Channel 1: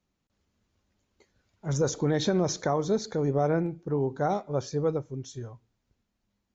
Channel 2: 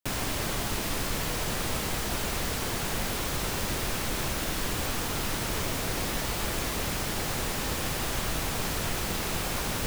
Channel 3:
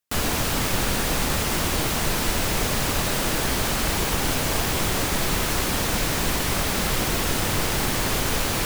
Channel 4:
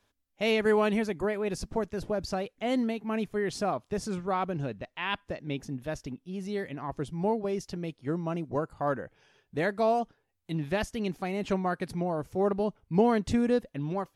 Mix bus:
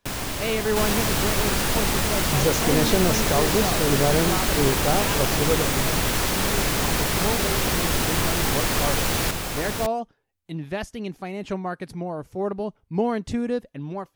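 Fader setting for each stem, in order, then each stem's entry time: +3.0 dB, +1.5 dB, -0.5 dB, 0.0 dB; 0.65 s, 0.00 s, 0.65 s, 0.00 s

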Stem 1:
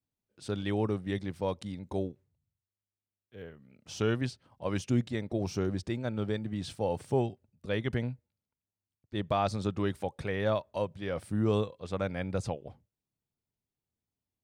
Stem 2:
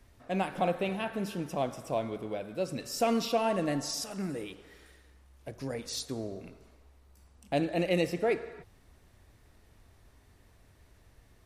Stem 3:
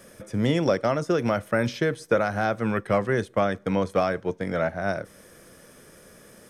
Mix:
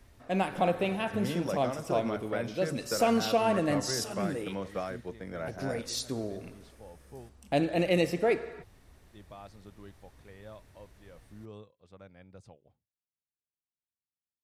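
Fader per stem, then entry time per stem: -19.5 dB, +2.0 dB, -12.5 dB; 0.00 s, 0.00 s, 0.80 s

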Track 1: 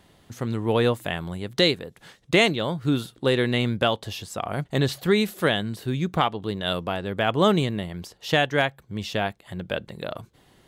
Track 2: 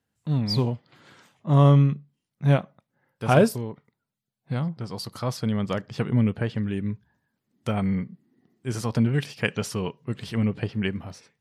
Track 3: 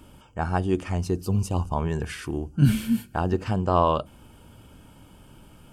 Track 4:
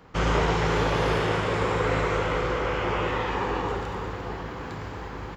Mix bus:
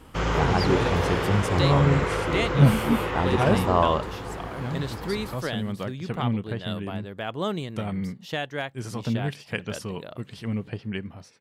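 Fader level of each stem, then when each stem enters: -9.0 dB, -5.0 dB, -0.5 dB, -1.5 dB; 0.00 s, 0.10 s, 0.00 s, 0.00 s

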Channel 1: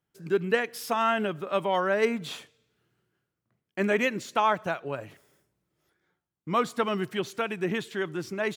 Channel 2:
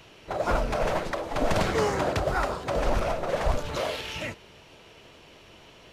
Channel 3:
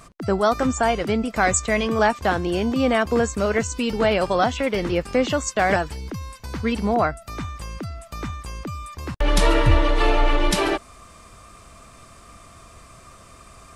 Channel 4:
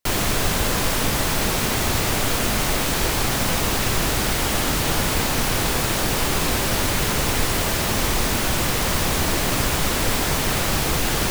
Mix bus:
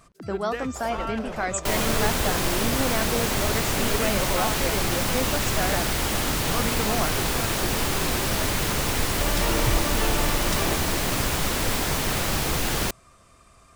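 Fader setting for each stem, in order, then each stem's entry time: -8.0 dB, -10.0 dB, -8.5 dB, -3.5 dB; 0.00 s, 0.45 s, 0.00 s, 1.60 s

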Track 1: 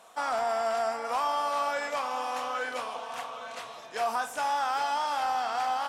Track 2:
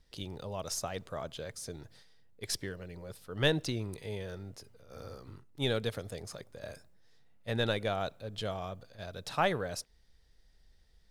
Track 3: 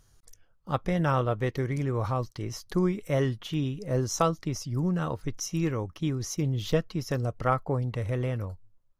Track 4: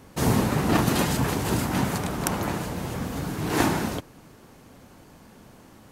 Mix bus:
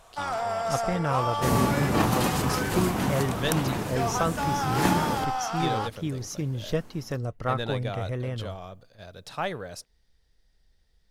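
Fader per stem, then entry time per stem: -0.5 dB, -1.5 dB, -2.0 dB, -2.5 dB; 0.00 s, 0.00 s, 0.00 s, 1.25 s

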